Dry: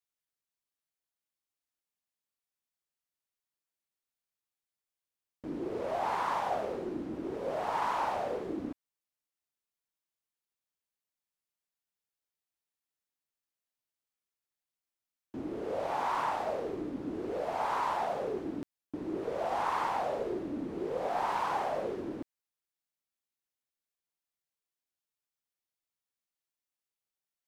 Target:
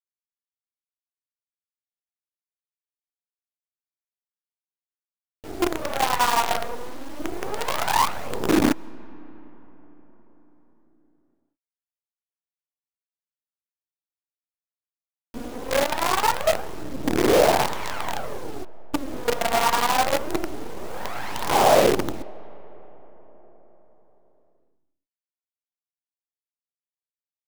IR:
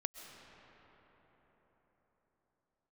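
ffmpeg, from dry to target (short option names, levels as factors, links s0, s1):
-filter_complex "[0:a]asettb=1/sr,asplit=3[s0][s1][s2];[s0]atrim=end=6.034[s3];[s1]atrim=start=6.03:end=7.2,asetpts=PTS-STARTPTS,afade=t=in:d=0.004:c=qsin,afade=t=out:st=1.166:d=0.004:c=qsin,highpass=440[s4];[s2]atrim=start=7.196[s5];[s3][s4]acrossfade=d=0.004:c1=hsin:c2=qsin[s6];[s6][s5]acrossfade=d=0.004:c1=qsin:c2=hsin,aphaser=in_gain=1:out_gain=1:delay=4.3:decay=0.78:speed=0.23:type=sinusoidal,acrusher=bits=5:dc=4:mix=0:aa=0.000001,asplit=2[s7][s8];[1:a]atrim=start_sample=2205[s9];[s8][s9]afir=irnorm=-1:irlink=0,volume=0.178[s10];[s7][s10]amix=inputs=2:normalize=0,volume=1.68"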